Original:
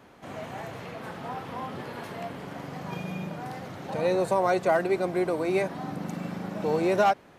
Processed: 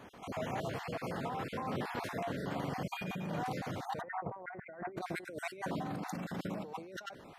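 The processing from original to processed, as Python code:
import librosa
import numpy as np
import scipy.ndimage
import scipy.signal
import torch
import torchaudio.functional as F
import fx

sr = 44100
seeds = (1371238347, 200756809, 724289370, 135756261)

y = fx.spec_dropout(x, sr, seeds[0], share_pct=31)
y = fx.steep_lowpass(y, sr, hz=2100.0, slope=72, at=(4.0, 4.96), fade=0.02)
y = fx.over_compress(y, sr, threshold_db=-37.0, ratio=-1.0)
y = F.gain(torch.from_numpy(y), -3.5).numpy()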